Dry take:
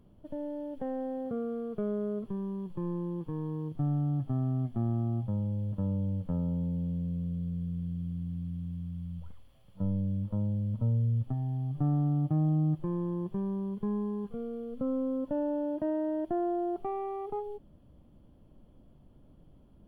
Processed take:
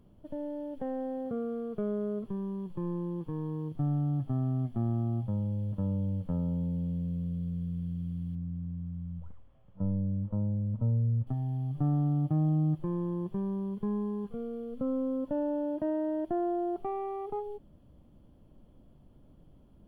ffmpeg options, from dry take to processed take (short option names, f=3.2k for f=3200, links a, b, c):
-filter_complex "[0:a]asettb=1/sr,asplit=3[a][b][c];[a]atrim=end=8.354[d];[b]atrim=start=8.35:end=11.27,asetpts=PTS-STARTPTS,afade=t=in:d=0.004:c=qsin,afade=t=out:st=2.916:d=0.004:c=qsin,lowpass=1.6k[e];[c]atrim=start=11.266[f];[d][e]acrossfade=d=0.004:c1=hsin:c2=qsin[g];[g][f]acrossfade=d=0.004:c1=qsin:c2=hsin"